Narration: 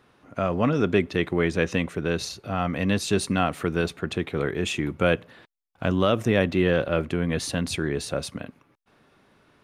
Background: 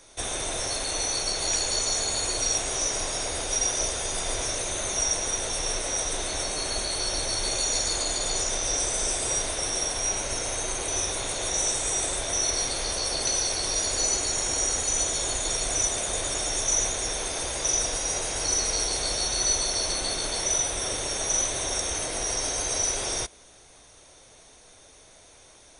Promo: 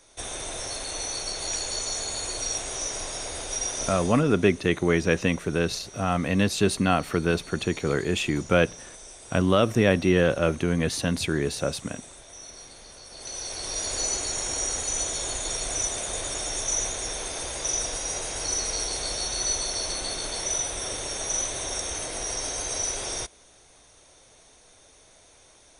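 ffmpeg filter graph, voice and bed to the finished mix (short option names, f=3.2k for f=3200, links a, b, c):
-filter_complex "[0:a]adelay=3500,volume=1dB[a];[1:a]volume=11.5dB,afade=t=out:st=3.91:d=0.33:silence=0.199526,afade=t=in:st=13.09:d=0.85:silence=0.16788[b];[a][b]amix=inputs=2:normalize=0"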